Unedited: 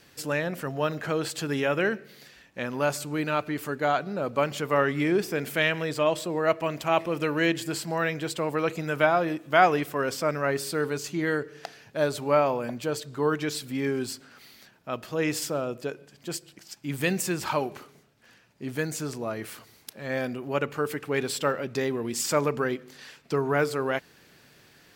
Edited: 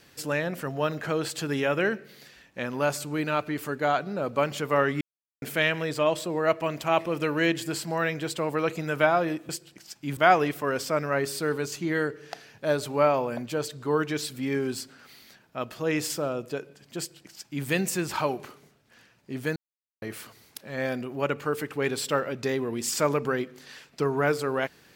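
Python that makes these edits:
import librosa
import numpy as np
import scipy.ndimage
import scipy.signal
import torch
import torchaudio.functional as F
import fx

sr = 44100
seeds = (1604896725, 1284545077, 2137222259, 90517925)

y = fx.edit(x, sr, fx.silence(start_s=5.01, length_s=0.41),
    fx.duplicate(start_s=16.3, length_s=0.68, to_s=9.49),
    fx.silence(start_s=18.88, length_s=0.46), tone=tone)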